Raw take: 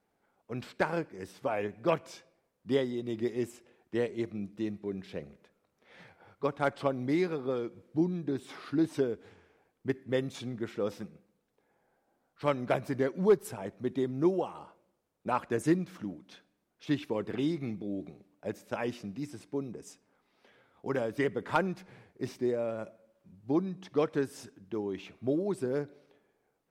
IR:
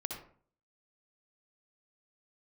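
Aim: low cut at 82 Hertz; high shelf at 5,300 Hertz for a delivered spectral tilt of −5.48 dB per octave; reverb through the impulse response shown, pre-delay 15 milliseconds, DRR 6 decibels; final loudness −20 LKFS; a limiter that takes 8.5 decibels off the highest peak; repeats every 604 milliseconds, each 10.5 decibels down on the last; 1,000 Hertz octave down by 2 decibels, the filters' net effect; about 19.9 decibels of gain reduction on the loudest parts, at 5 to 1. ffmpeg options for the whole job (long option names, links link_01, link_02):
-filter_complex "[0:a]highpass=82,equalizer=frequency=1000:width_type=o:gain=-3,highshelf=frequency=5300:gain=6.5,acompressor=threshold=-42dB:ratio=5,alimiter=level_in=11.5dB:limit=-24dB:level=0:latency=1,volume=-11.5dB,aecho=1:1:604|1208|1812:0.299|0.0896|0.0269,asplit=2[link_01][link_02];[1:a]atrim=start_sample=2205,adelay=15[link_03];[link_02][link_03]afir=irnorm=-1:irlink=0,volume=-6.5dB[link_04];[link_01][link_04]amix=inputs=2:normalize=0,volume=27dB"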